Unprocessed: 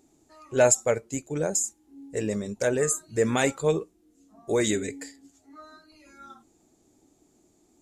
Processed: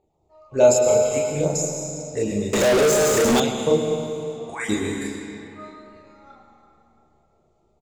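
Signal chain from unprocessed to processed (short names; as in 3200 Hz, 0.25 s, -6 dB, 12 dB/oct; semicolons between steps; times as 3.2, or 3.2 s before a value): random spectral dropouts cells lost 21%; AGC gain up to 3.5 dB; envelope phaser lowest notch 270 Hz, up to 1800 Hz, full sweep at -21.5 dBFS; early reflections 29 ms -3.5 dB, 42 ms -4 dB; reverb RT60 2.8 s, pre-delay 0.102 s, DRR 2.5 dB; low-pass opened by the level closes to 1900 Hz, open at -24 dBFS; 1.05–1.45 bell 3000 Hz +6.5 dB 0.77 oct; 2.53–3.4 overdrive pedal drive 34 dB, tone 5900 Hz, clips at -12 dBFS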